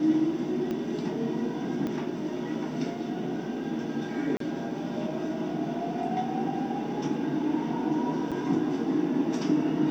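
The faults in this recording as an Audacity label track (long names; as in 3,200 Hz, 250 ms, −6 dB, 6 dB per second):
0.710000	0.710000	click −21 dBFS
1.870000	1.870000	click −20 dBFS
4.370000	4.400000	drop-out 33 ms
8.310000	8.320000	drop-out 6.7 ms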